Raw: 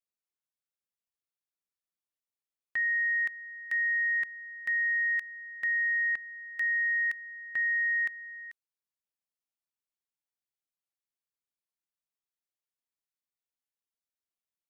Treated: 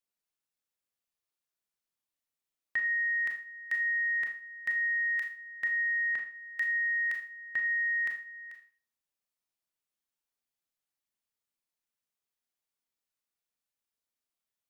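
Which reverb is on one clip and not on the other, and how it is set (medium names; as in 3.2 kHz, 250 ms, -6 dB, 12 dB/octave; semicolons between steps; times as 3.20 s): Schroeder reverb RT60 0.4 s, combs from 26 ms, DRR 3 dB; trim +1 dB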